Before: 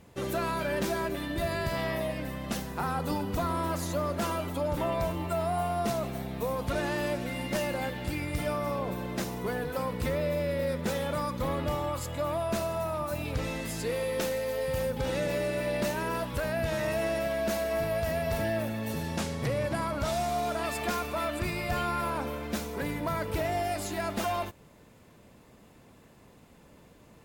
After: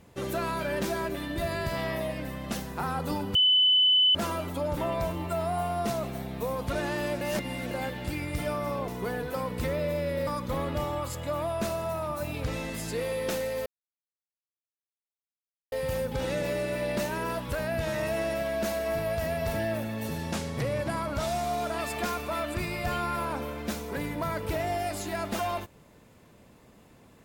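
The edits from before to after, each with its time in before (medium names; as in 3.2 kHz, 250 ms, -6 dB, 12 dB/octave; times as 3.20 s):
3.35–4.15 s: bleep 3.01 kHz -18 dBFS
7.21–7.71 s: reverse
8.88–9.30 s: delete
10.69–11.18 s: delete
14.57 s: insert silence 2.06 s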